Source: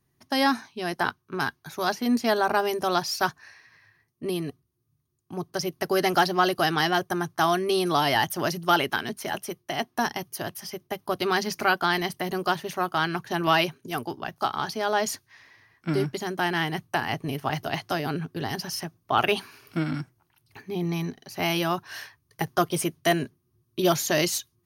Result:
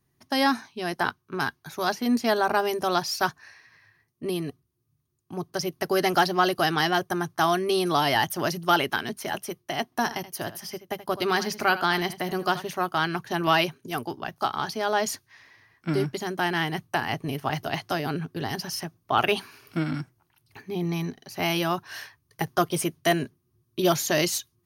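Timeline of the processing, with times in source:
9.84–12.67 echo 79 ms -14.5 dB

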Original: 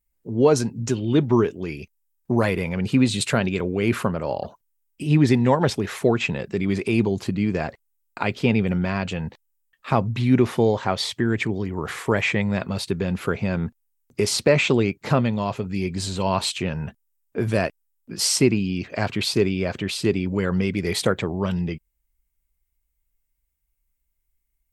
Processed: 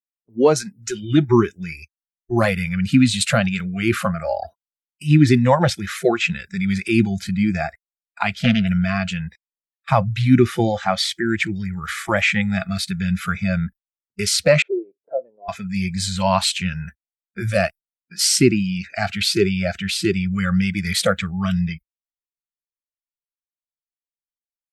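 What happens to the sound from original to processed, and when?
8.3–8.7 Doppler distortion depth 0.35 ms
14.62–15.49 Butterworth band-pass 470 Hz, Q 1.9
whole clip: gate -37 dBFS, range -23 dB; spectral noise reduction 25 dB; AGC gain up to 4 dB; gain +1.5 dB

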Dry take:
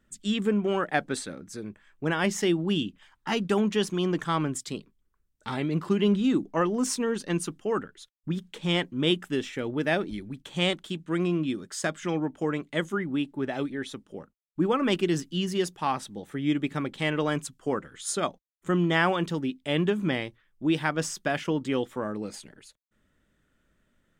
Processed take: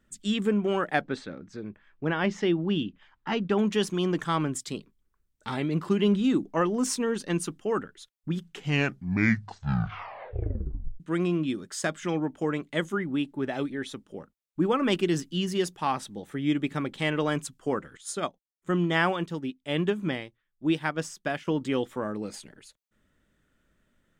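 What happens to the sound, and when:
1.01–3.59 air absorption 180 m
8.3 tape stop 2.70 s
17.97–21.47 upward expander, over -45 dBFS

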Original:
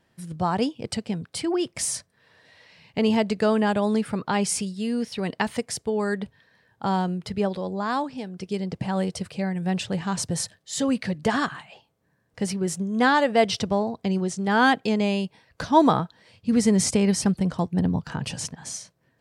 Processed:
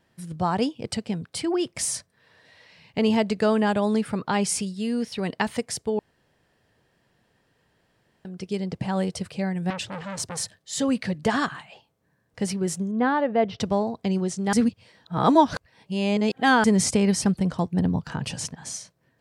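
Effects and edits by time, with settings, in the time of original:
5.99–8.25 room tone
9.7–10.78 core saturation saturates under 1900 Hz
12.91–13.6 tape spacing loss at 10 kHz 40 dB
14.53–16.64 reverse

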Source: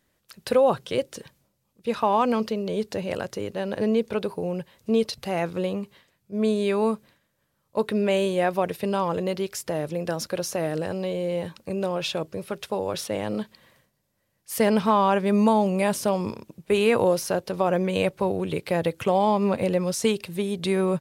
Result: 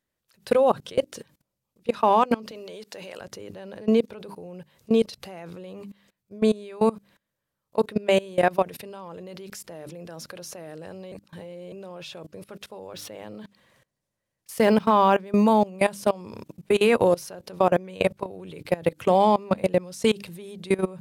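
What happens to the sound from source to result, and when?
2.51–3.21 HPF 860 Hz 6 dB/oct
11.12–11.72 reverse
12.87–15.8 decimation joined by straight lines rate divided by 2×
whole clip: notches 50/100/150/200/250/300 Hz; level quantiser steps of 22 dB; gain +4.5 dB

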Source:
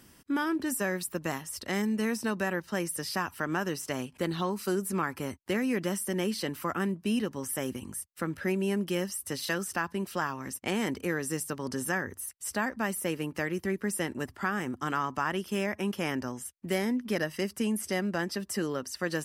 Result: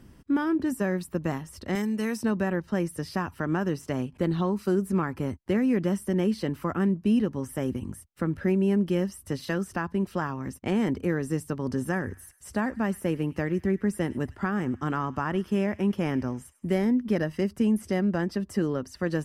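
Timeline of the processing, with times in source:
1.75–2.23 tilt +2.5 dB/oct
11.75–16.87 thin delay 0.102 s, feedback 46%, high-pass 1800 Hz, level -17.5 dB
whole clip: tilt -3 dB/oct

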